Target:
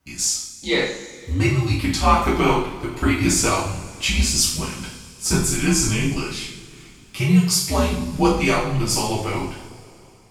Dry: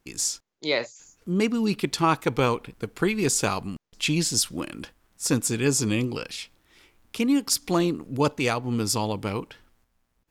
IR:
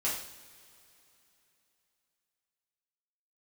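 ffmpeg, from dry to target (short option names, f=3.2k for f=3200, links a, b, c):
-filter_complex "[0:a]afreqshift=-100[a];[1:a]atrim=start_sample=2205[b];[a][b]afir=irnorm=-1:irlink=0"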